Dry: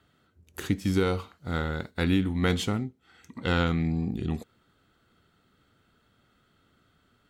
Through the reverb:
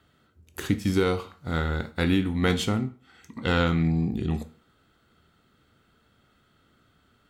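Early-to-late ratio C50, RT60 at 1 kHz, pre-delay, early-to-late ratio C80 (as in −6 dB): 16.0 dB, 0.40 s, 12 ms, 20.5 dB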